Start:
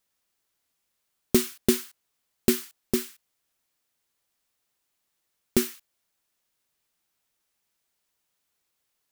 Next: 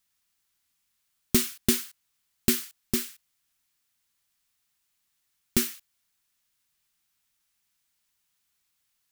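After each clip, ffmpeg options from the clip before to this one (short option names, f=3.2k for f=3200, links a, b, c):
-af "equalizer=f=490:w=0.85:g=-12.5,volume=2.5dB"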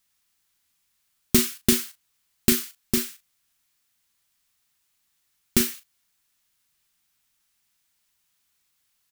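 -filter_complex "[0:a]asplit=2[a][b];[b]adelay=38,volume=-11.5dB[c];[a][c]amix=inputs=2:normalize=0,volume=3.5dB"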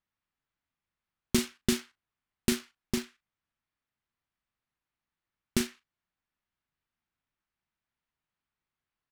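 -af "adynamicsmooth=sensitivity=6:basefreq=1.9k,volume=-5.5dB"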